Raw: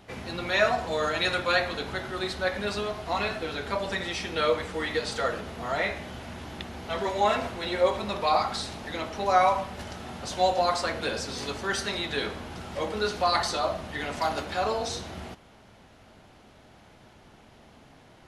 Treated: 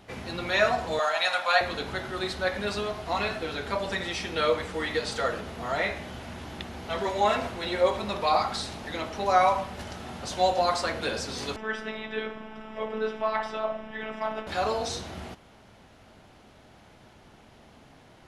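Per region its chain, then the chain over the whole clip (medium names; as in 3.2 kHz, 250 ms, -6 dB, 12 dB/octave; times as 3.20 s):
0.99–1.61 s: high-pass 250 Hz + resonant low shelf 510 Hz -10.5 dB, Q 3
11.56–14.47 s: robot voice 218 Hz + Savitzky-Golay filter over 25 samples
whole clip: none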